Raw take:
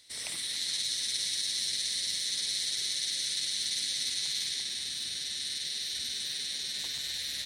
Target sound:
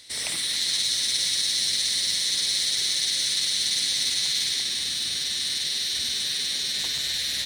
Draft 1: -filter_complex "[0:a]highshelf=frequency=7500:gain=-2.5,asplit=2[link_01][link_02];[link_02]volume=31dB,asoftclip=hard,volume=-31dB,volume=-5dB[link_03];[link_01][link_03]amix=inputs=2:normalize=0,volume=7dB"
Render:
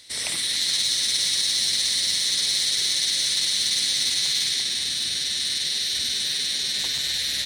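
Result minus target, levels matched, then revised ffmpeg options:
gain into a clipping stage and back: distortion −7 dB
-filter_complex "[0:a]highshelf=frequency=7500:gain=-2.5,asplit=2[link_01][link_02];[link_02]volume=41.5dB,asoftclip=hard,volume=-41.5dB,volume=-5dB[link_03];[link_01][link_03]amix=inputs=2:normalize=0,volume=7dB"

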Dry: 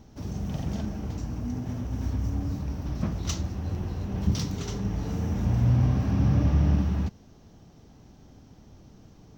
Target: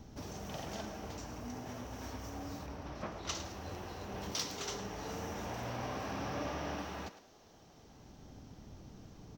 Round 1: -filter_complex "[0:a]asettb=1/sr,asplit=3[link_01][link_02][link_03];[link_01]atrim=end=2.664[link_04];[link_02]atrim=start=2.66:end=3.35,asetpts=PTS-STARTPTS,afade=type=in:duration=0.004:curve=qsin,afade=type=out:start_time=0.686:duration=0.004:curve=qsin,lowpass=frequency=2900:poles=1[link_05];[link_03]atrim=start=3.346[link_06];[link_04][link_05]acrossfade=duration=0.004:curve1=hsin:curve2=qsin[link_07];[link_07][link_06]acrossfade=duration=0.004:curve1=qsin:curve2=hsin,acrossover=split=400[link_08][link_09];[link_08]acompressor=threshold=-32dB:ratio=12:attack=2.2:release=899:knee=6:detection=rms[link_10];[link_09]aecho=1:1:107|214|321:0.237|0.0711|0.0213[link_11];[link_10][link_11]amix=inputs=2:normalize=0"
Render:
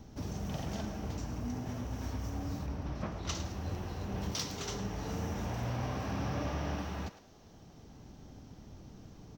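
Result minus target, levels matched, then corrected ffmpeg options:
downward compressor: peak gain reduction −9.5 dB
-filter_complex "[0:a]asettb=1/sr,asplit=3[link_01][link_02][link_03];[link_01]atrim=end=2.664[link_04];[link_02]atrim=start=2.66:end=3.35,asetpts=PTS-STARTPTS,afade=type=in:duration=0.004:curve=qsin,afade=type=out:start_time=0.686:duration=0.004:curve=qsin,lowpass=frequency=2900:poles=1[link_05];[link_03]atrim=start=3.346[link_06];[link_04][link_05]acrossfade=duration=0.004:curve1=hsin:curve2=qsin[link_07];[link_07][link_06]acrossfade=duration=0.004:curve1=qsin:curve2=hsin,acrossover=split=400[link_08][link_09];[link_08]acompressor=threshold=-42.5dB:ratio=12:attack=2.2:release=899:knee=6:detection=rms[link_10];[link_09]aecho=1:1:107|214|321:0.237|0.0711|0.0213[link_11];[link_10][link_11]amix=inputs=2:normalize=0"

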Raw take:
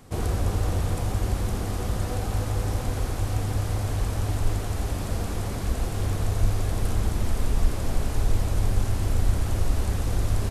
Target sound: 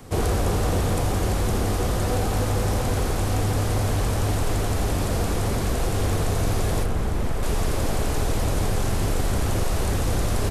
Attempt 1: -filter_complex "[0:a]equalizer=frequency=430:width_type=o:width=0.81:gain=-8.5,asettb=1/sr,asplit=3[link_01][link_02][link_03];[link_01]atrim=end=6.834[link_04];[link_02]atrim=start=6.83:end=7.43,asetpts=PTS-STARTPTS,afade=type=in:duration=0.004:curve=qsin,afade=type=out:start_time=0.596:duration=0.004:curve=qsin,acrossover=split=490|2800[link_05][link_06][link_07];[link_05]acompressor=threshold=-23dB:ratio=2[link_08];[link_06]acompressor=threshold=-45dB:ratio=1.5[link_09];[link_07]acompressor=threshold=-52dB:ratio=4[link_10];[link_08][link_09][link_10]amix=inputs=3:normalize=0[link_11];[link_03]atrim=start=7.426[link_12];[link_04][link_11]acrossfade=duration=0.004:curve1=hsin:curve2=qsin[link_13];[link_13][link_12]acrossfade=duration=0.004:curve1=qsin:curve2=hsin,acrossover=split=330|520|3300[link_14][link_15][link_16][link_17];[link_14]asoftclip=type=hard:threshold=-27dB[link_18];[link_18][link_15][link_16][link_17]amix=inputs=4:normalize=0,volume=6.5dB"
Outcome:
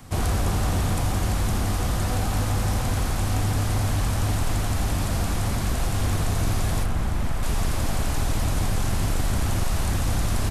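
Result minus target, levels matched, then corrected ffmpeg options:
500 Hz band −6.0 dB
-filter_complex "[0:a]equalizer=frequency=430:width_type=o:width=0.81:gain=2.5,asettb=1/sr,asplit=3[link_01][link_02][link_03];[link_01]atrim=end=6.834[link_04];[link_02]atrim=start=6.83:end=7.43,asetpts=PTS-STARTPTS,afade=type=in:duration=0.004:curve=qsin,afade=type=out:start_time=0.596:duration=0.004:curve=qsin,acrossover=split=490|2800[link_05][link_06][link_07];[link_05]acompressor=threshold=-23dB:ratio=2[link_08];[link_06]acompressor=threshold=-45dB:ratio=1.5[link_09];[link_07]acompressor=threshold=-52dB:ratio=4[link_10];[link_08][link_09][link_10]amix=inputs=3:normalize=0[link_11];[link_03]atrim=start=7.426[link_12];[link_04][link_11]acrossfade=duration=0.004:curve1=hsin:curve2=qsin[link_13];[link_13][link_12]acrossfade=duration=0.004:curve1=qsin:curve2=hsin,acrossover=split=330|520|3300[link_14][link_15][link_16][link_17];[link_14]asoftclip=type=hard:threshold=-27dB[link_18];[link_18][link_15][link_16][link_17]amix=inputs=4:normalize=0,volume=6.5dB"

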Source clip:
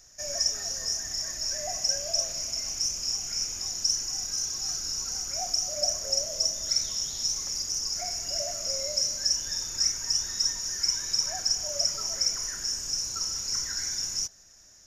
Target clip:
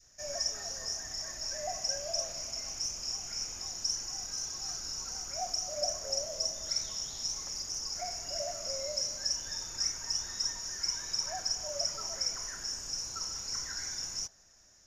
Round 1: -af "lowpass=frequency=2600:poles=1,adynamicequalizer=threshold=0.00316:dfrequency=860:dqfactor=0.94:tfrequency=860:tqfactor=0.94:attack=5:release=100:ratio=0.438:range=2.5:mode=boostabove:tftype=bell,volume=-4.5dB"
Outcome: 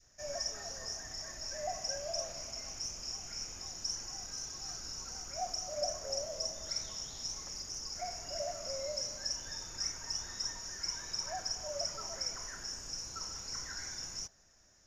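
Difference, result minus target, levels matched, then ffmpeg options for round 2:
2,000 Hz band +3.0 dB
-af "lowpass=frequency=6100:poles=1,adynamicequalizer=threshold=0.00316:dfrequency=860:dqfactor=0.94:tfrequency=860:tqfactor=0.94:attack=5:release=100:ratio=0.438:range=2.5:mode=boostabove:tftype=bell,volume=-4.5dB"

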